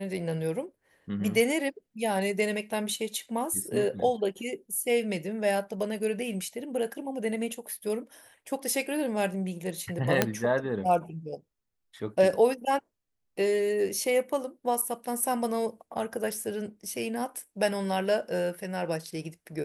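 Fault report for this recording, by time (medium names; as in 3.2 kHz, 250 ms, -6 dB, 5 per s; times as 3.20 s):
10.22 s: pop -6 dBFS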